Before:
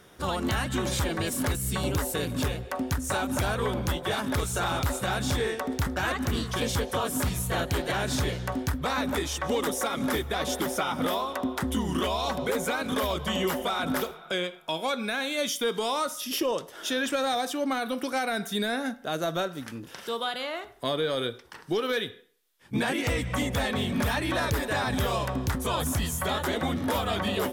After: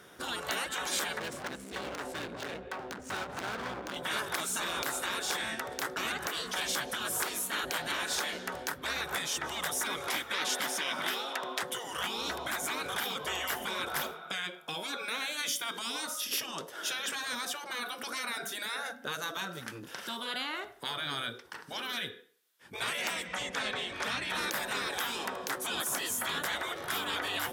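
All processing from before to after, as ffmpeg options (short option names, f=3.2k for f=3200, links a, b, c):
-filter_complex "[0:a]asettb=1/sr,asplit=3[a][b][c];[a]atrim=end=1.194[d];[b]atrim=start=1.19:end=3.96,asetpts=PTS-STARTPTS,afade=t=in:d=0.004:c=qsin,afade=t=out:st=2.766:d=0.004:c=qsin,adynamicsmooth=sensitivity=5:basefreq=2.4k,asoftclip=type=hard:threshold=-32.5dB[e];[c]atrim=start=3.956[f];[d][e]acrossfade=d=0.004:c1=hsin:c2=qsin[g];[g][f]acrossfade=d=0.004:c1=qsin:c2=hsin,asettb=1/sr,asplit=3[h][i][j];[h]atrim=end=10.074[k];[i]atrim=start=10.07:end=11.64,asetpts=PTS-STARTPTS,afade=t=in:d=0.004:c=qsin,afade=t=out:st=1.566:d=0.004:c=qsin,highshelf=f=8.7k:g=-12,acontrast=67,highpass=f=1.4k:p=1[l];[j]atrim=start=11.636[m];[k][l]acrossfade=d=0.004:c1=hsin:c2=qsin[n];[n][m]acrossfade=d=0.004:c1=qsin:c2=hsin,asettb=1/sr,asplit=3[o][p][q];[o]atrim=end=23.274[r];[p]atrim=start=23.27:end=24.3,asetpts=PTS-STARTPTS,afade=t=in:d=0.004:c=qsin,afade=t=out:st=1.026:d=0.004:c=qsin,lowpass=6.8k,equalizer=f=320:t=o:w=2.6:g=-8[s];[q]atrim=start=24.296[t];[r][s]acrossfade=d=0.004:c1=hsin:c2=qsin[u];[u][t]acrossfade=d=0.004:c1=qsin:c2=hsin,afftfilt=real='re*lt(hypot(re,im),0.1)':imag='im*lt(hypot(re,im),0.1)':win_size=1024:overlap=0.75,highpass=f=200:p=1,equalizer=f=1.5k:w=4.2:g=4"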